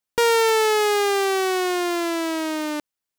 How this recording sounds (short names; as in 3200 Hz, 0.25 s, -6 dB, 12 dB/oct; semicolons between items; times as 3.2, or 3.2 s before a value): noise floor -86 dBFS; spectral tilt -1.0 dB/oct